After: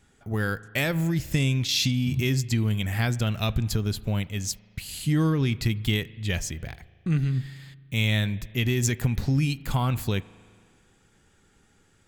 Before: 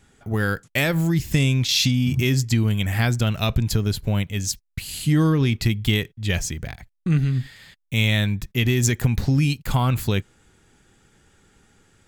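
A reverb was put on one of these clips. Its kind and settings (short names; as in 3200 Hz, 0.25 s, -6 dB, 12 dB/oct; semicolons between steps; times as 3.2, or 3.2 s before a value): spring tank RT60 2 s, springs 37 ms, chirp 40 ms, DRR 19 dB; gain -4.5 dB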